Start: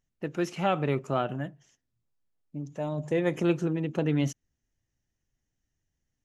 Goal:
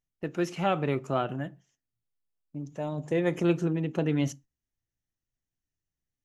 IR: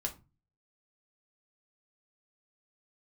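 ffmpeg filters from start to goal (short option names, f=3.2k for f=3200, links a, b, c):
-filter_complex "[0:a]agate=range=-9dB:threshold=-48dB:ratio=16:detection=peak,asplit=2[a][b];[1:a]atrim=start_sample=2205,afade=t=out:st=0.18:d=0.01,atrim=end_sample=8379[c];[b][c]afir=irnorm=-1:irlink=0,volume=-12.5dB[d];[a][d]amix=inputs=2:normalize=0,volume=-2dB"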